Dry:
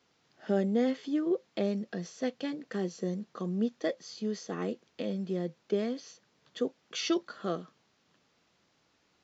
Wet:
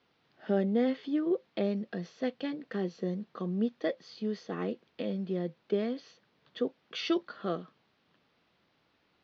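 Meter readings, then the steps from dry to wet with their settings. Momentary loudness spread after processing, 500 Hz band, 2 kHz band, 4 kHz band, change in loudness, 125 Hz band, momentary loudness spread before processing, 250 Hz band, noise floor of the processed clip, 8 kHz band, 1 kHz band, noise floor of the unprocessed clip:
8 LU, 0.0 dB, 0.0 dB, -1.5 dB, 0.0 dB, 0.0 dB, 8 LU, 0.0 dB, -72 dBFS, n/a, 0.0 dB, -72 dBFS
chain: LPF 4300 Hz 24 dB/oct

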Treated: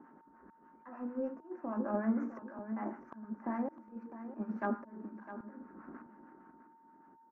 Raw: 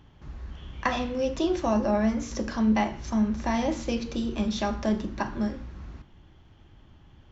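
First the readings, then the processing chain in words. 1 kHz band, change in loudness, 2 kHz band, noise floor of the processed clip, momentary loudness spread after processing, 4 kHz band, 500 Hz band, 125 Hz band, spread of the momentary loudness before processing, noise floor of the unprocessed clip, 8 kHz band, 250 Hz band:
-12.0 dB, -12.0 dB, -14.0 dB, -63 dBFS, 19 LU, under -40 dB, -12.5 dB, under -15 dB, 18 LU, -55 dBFS, n/a, -11.5 dB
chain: tracing distortion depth 0.052 ms; elliptic band-pass 240–1500 Hz, stop band 40 dB; bell 630 Hz -8.5 dB 1.5 oct; transient shaper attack +6 dB, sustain -1 dB; reverse; compressor 8:1, threshold -36 dBFS, peak gain reduction 15 dB; reverse; auto swell 0.611 s; whine 910 Hz -69 dBFS; harmonic tremolo 6.6 Hz, crossover 780 Hz; on a send: echo 0.656 s -12.5 dB; on the sum: gain +10.5 dB

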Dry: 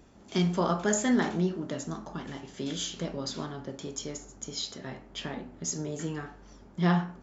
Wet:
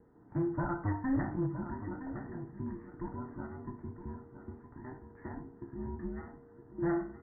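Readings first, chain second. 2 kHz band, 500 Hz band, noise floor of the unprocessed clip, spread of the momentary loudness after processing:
-10.0 dB, -7.5 dB, -53 dBFS, 16 LU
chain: band inversion scrambler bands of 500 Hz; low shelf 260 Hz +7.5 dB; one-sided clip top -18.5 dBFS; steep low-pass 1900 Hz 96 dB/oct; echo 0.965 s -11 dB; gain -9 dB

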